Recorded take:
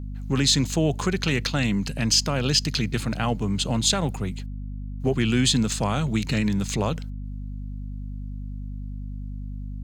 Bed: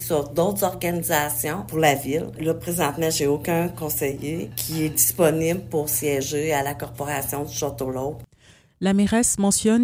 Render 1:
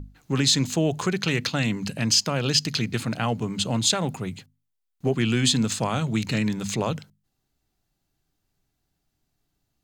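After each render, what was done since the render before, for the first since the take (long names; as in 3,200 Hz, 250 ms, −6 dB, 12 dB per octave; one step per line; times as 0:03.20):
mains-hum notches 50/100/150/200/250 Hz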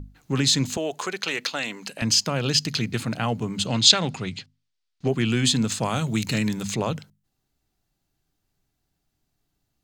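0:00.77–0:02.02: high-pass filter 450 Hz
0:03.66–0:05.08: drawn EQ curve 900 Hz 0 dB, 1,500 Hz +4 dB, 4,800 Hz +10 dB, 8,700 Hz −3 dB, 13,000 Hz −18 dB
0:05.84–0:06.63: high-shelf EQ 6,400 Hz +10 dB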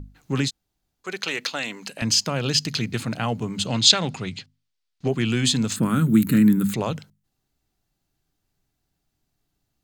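0:00.48–0:01.07: fill with room tone, crossfade 0.06 s
0:05.76–0:06.74: drawn EQ curve 110 Hz 0 dB, 190 Hz +10 dB, 290 Hz +11 dB, 730 Hz −13 dB, 1,400 Hz +5 dB, 2,500 Hz −8 dB, 3,700 Hz −8 dB, 5,900 Hz −17 dB, 8,400 Hz +1 dB, 13,000 Hz +13 dB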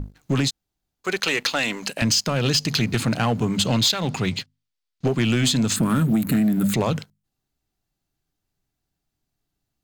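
downward compressor 12 to 1, threshold −22 dBFS, peak gain reduction 13.5 dB
leveller curve on the samples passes 2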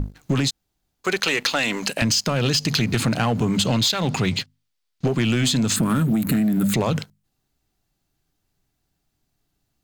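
in parallel at 0 dB: brickwall limiter −20.5 dBFS, peak gain reduction 9.5 dB
on the sum: downward compressor, threshold −17 dBFS, peak gain reduction 4.5 dB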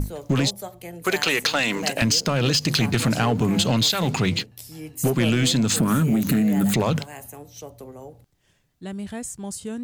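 mix in bed −13.5 dB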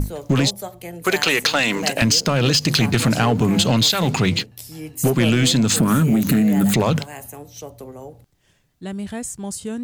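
level +3.5 dB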